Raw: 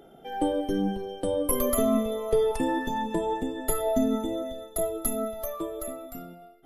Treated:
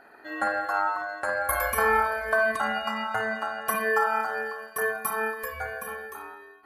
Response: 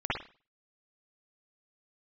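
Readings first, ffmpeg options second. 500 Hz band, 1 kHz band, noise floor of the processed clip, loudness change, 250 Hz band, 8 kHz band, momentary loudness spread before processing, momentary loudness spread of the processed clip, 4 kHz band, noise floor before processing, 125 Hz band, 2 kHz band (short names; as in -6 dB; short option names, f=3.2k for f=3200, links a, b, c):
-3.0 dB, +6.5 dB, -51 dBFS, +1.0 dB, -13.0 dB, -4.5 dB, 11 LU, 12 LU, +1.0 dB, -51 dBFS, -8.0 dB, +17.5 dB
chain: -filter_complex "[0:a]asplit=2[a][b];[b]highshelf=f=2.4k:g=10.5[c];[1:a]atrim=start_sample=2205,lowpass=2.4k[d];[c][d]afir=irnorm=-1:irlink=0,volume=-12.5dB[e];[a][e]amix=inputs=2:normalize=0,aeval=exprs='val(0)*sin(2*PI*1100*n/s)':c=same"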